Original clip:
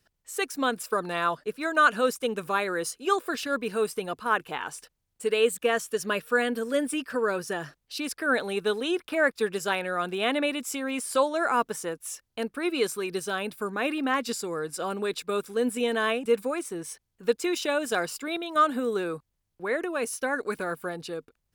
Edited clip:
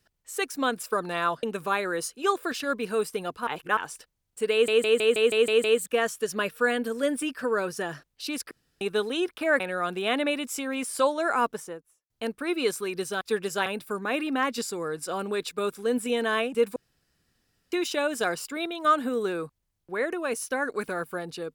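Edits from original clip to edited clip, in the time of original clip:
0:01.43–0:02.26: remove
0:04.30–0:04.60: reverse
0:05.35: stutter 0.16 s, 8 plays
0:08.22–0:08.52: fill with room tone
0:09.31–0:09.76: move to 0:13.37
0:11.54–0:12.26: fade out and dull
0:16.47–0:17.43: fill with room tone

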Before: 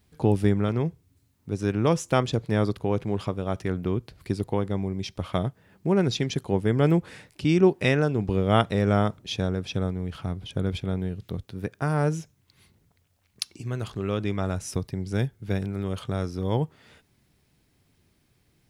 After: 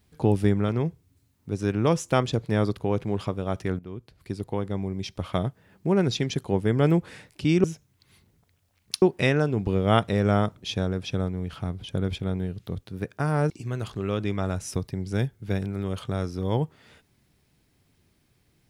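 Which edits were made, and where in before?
0:03.79–0:05.45: fade in equal-power, from −15.5 dB
0:12.12–0:13.50: move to 0:07.64

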